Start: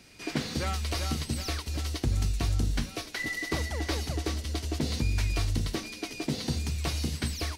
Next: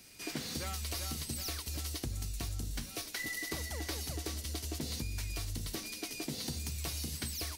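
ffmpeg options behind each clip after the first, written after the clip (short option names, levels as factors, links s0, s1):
-af "aemphasis=mode=production:type=50fm,acompressor=threshold=0.0355:ratio=6,volume=0.531"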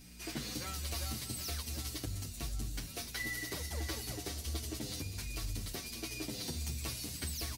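-filter_complex "[0:a]aeval=exprs='val(0)+0.00355*(sin(2*PI*60*n/s)+sin(2*PI*2*60*n/s)/2+sin(2*PI*3*60*n/s)/3+sin(2*PI*4*60*n/s)/4+sin(2*PI*5*60*n/s)/5)':c=same,aecho=1:1:208|416|624|832|1040|1248:0.224|0.125|0.0702|0.0393|0.022|0.0123,asplit=2[s0][s1];[s1]adelay=7.9,afreqshift=-1.4[s2];[s0][s2]amix=inputs=2:normalize=1,volume=1.19"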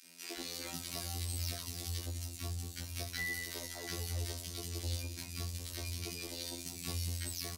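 -filter_complex "[0:a]afftfilt=real='hypot(re,im)*cos(PI*b)':imag='0':win_size=2048:overlap=0.75,asplit=2[s0][s1];[s1]volume=21.1,asoftclip=hard,volume=0.0473,volume=0.335[s2];[s0][s2]amix=inputs=2:normalize=0,acrossover=split=260|1200[s3][s4][s5];[s4]adelay=40[s6];[s3]adelay=380[s7];[s7][s6][s5]amix=inputs=3:normalize=0,volume=1.12"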